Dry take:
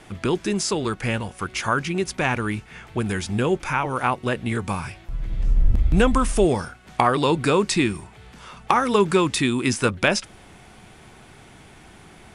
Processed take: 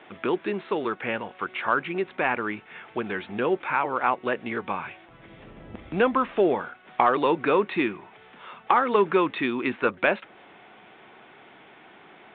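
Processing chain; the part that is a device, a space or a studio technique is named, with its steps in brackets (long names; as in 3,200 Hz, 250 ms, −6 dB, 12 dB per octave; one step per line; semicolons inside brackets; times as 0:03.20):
dynamic equaliser 3,400 Hz, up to −5 dB, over −41 dBFS, Q 2
telephone (band-pass filter 330–3,400 Hz; soft clipping −6 dBFS, distortion −24 dB; A-law companding 64 kbit/s 8,000 Hz)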